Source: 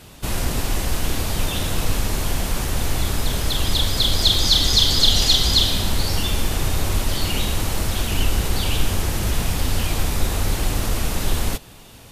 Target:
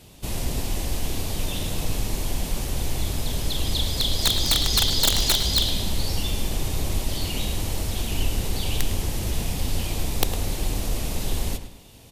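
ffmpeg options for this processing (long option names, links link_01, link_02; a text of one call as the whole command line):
ffmpeg -i in.wav -filter_complex "[0:a]equalizer=frequency=1400:width_type=o:width=0.94:gain=-8.5,aeval=exprs='(mod(2.11*val(0)+1,2)-1)/2.11':channel_layout=same,asplit=2[link_01][link_02];[link_02]adelay=106,lowpass=frequency=4600:poles=1,volume=-10dB,asplit=2[link_03][link_04];[link_04]adelay=106,lowpass=frequency=4600:poles=1,volume=0.4,asplit=2[link_05][link_06];[link_06]adelay=106,lowpass=frequency=4600:poles=1,volume=0.4,asplit=2[link_07][link_08];[link_08]adelay=106,lowpass=frequency=4600:poles=1,volume=0.4[link_09];[link_03][link_05][link_07][link_09]amix=inputs=4:normalize=0[link_10];[link_01][link_10]amix=inputs=2:normalize=0,volume=-4.5dB" out.wav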